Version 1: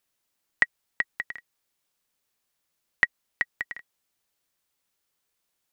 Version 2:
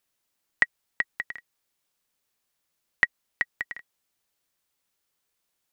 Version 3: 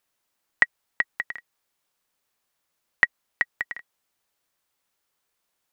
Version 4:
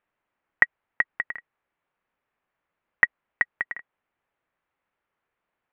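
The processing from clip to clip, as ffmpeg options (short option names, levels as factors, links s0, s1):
-af anull
-af "equalizer=f=980:t=o:w=2.3:g=4.5"
-af "lowpass=f=2400:w=0.5412,lowpass=f=2400:w=1.3066,volume=1.19"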